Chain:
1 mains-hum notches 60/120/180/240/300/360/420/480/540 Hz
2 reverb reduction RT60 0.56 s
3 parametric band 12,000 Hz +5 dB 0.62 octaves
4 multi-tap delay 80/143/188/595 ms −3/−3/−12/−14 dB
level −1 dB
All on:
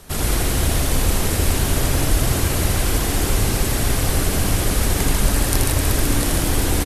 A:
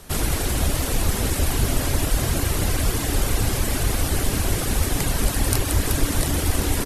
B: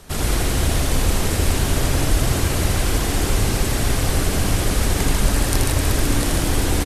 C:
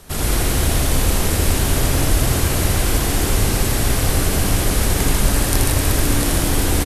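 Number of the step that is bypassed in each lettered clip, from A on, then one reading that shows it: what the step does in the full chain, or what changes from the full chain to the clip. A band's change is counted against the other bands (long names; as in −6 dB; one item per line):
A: 4, echo-to-direct ratio 0.5 dB to none audible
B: 3, 8 kHz band −2.0 dB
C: 2, change in integrated loudness +1.5 LU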